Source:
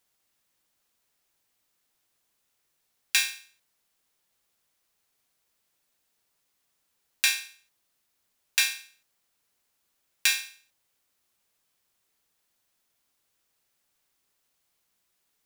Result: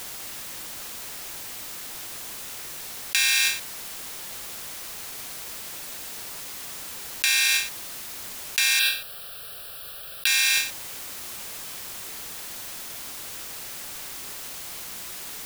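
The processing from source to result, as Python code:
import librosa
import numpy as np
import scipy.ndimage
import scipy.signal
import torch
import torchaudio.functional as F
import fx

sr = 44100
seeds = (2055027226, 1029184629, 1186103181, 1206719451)

y = fx.fixed_phaser(x, sr, hz=1400.0, stages=8, at=(8.79, 10.27))
y = fx.env_flatten(y, sr, amount_pct=100)
y = F.gain(torch.from_numpy(y), -1.5).numpy()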